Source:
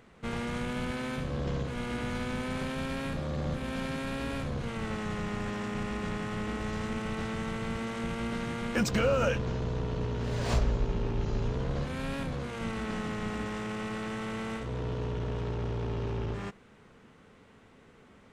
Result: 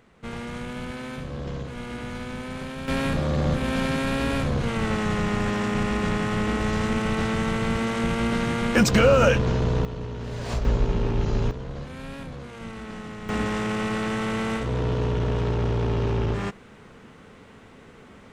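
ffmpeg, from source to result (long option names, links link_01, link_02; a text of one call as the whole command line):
ffmpeg -i in.wav -af "asetnsamples=nb_out_samples=441:pad=0,asendcmd='2.88 volume volume 9.5dB;9.85 volume volume -0.5dB;10.65 volume volume 7dB;11.51 volume volume -2.5dB;13.29 volume volume 9dB',volume=0dB" out.wav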